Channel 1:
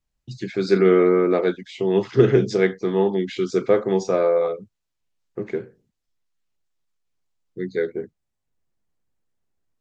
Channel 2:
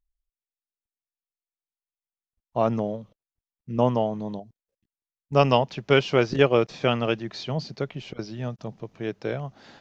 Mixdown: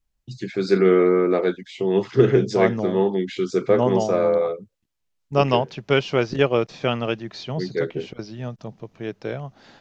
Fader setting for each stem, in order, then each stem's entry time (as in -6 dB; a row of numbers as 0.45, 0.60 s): -0.5, 0.0 dB; 0.00, 0.00 s